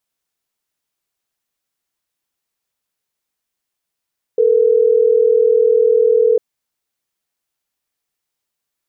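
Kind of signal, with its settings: call progress tone ringback tone, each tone -12 dBFS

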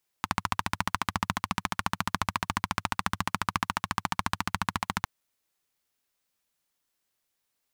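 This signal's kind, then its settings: single-cylinder engine model, steady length 4.81 s, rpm 1700, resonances 100/180/1000 Hz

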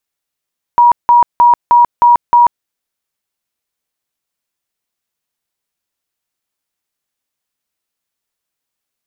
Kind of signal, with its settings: tone bursts 958 Hz, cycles 132, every 0.31 s, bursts 6, -3.5 dBFS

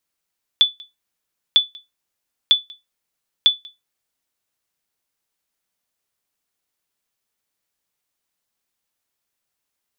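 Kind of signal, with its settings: sonar ping 3470 Hz, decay 0.19 s, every 0.95 s, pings 4, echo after 0.19 s, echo -26 dB -4.5 dBFS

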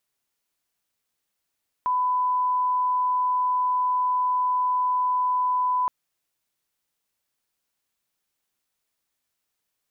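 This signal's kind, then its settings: line-up tone -20 dBFS 4.02 s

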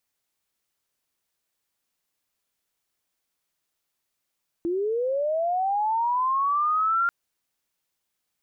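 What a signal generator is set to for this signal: chirp linear 330 Hz -> 1400 Hz -23 dBFS -> -19.5 dBFS 2.44 s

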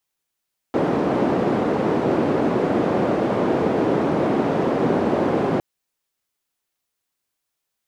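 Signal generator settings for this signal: noise band 220–400 Hz, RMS -20 dBFS 4.86 s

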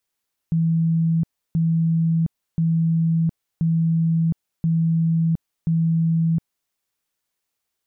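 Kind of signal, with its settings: tone bursts 164 Hz, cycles 117, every 1.03 s, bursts 6, -16 dBFS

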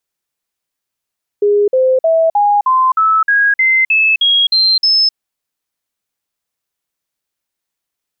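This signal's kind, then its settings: stepped sine 411 Hz up, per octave 3, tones 12, 0.26 s, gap 0.05 s -8 dBFS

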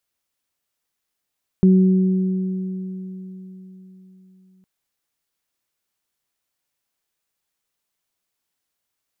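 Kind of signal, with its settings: additive tone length 3.01 s, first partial 187 Hz, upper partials -10 dB, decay 4.16 s, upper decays 3.43 s, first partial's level -9 dB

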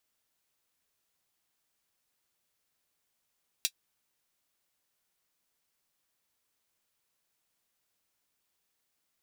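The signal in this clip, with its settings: closed hi-hat, high-pass 3300 Hz, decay 0.07 s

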